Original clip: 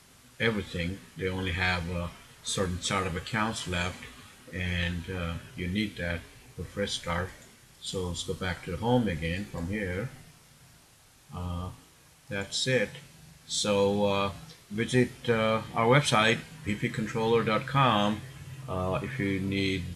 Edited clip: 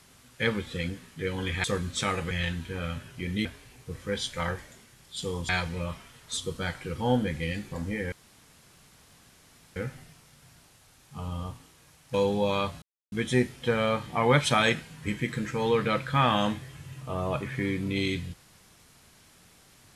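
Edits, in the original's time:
1.64–2.52 move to 8.19
3.19–4.7 cut
5.84–6.15 cut
9.94 insert room tone 1.64 s
12.32–13.75 cut
14.43–14.73 mute

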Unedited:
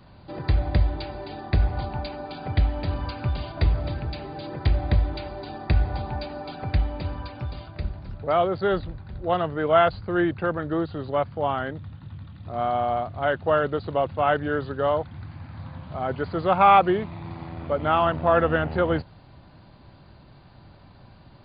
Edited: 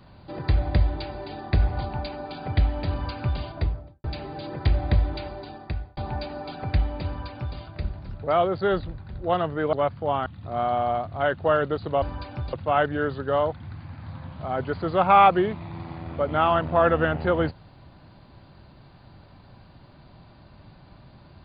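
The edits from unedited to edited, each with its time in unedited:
3.36–4.04 studio fade out
5.26–5.97 fade out
7.06–7.57 copy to 14.04
9.73–11.08 cut
11.61–12.28 cut

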